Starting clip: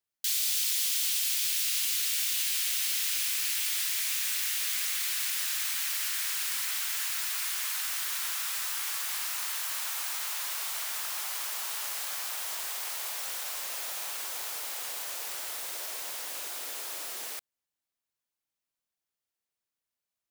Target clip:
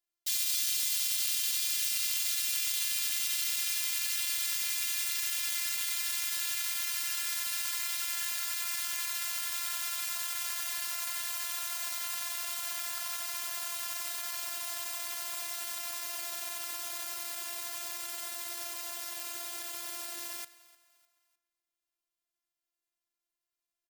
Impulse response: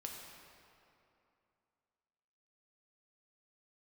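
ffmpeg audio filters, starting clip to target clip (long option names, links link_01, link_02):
-filter_complex "[0:a]asplit=2[link_01][link_02];[1:a]atrim=start_sample=2205,asetrate=79380,aresample=44100[link_03];[link_02][link_03]afir=irnorm=-1:irlink=0,volume=-4.5dB[link_04];[link_01][link_04]amix=inputs=2:normalize=0,atempo=0.85,asplit=4[link_05][link_06][link_07][link_08];[link_06]adelay=303,afreqshift=89,volume=-21dB[link_09];[link_07]adelay=606,afreqshift=178,volume=-28.7dB[link_10];[link_08]adelay=909,afreqshift=267,volume=-36.5dB[link_11];[link_05][link_09][link_10][link_11]amix=inputs=4:normalize=0,afftfilt=real='hypot(re,im)*cos(PI*b)':imag='0':win_size=512:overlap=0.75"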